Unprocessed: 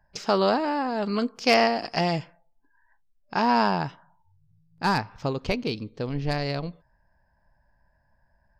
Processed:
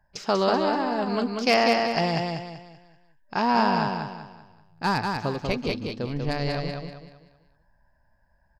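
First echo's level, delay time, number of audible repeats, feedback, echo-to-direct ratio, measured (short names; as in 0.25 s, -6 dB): -4.0 dB, 0.192 s, 4, 36%, -3.5 dB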